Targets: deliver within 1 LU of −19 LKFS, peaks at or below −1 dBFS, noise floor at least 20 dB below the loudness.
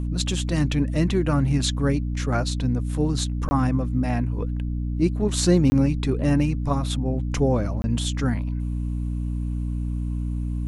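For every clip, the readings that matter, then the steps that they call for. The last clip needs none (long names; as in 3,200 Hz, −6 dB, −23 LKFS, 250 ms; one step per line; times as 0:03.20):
number of dropouts 3; longest dropout 20 ms; mains hum 60 Hz; hum harmonics up to 300 Hz; level of the hum −24 dBFS; integrated loudness −24.0 LKFS; sample peak −6.0 dBFS; target loudness −19.0 LKFS
→ repair the gap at 0:03.49/0:05.70/0:07.82, 20 ms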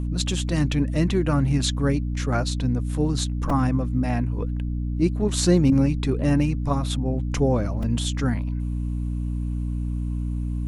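number of dropouts 0; mains hum 60 Hz; hum harmonics up to 300 Hz; level of the hum −24 dBFS
→ mains-hum notches 60/120/180/240/300 Hz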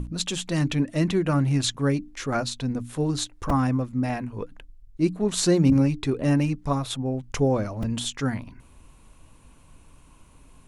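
mains hum none found; integrated loudness −25.0 LKFS; sample peak −9.0 dBFS; target loudness −19.0 LKFS
→ level +6 dB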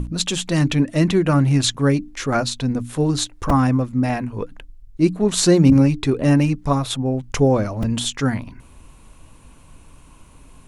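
integrated loudness −19.0 LKFS; sample peak −3.0 dBFS; background noise floor −47 dBFS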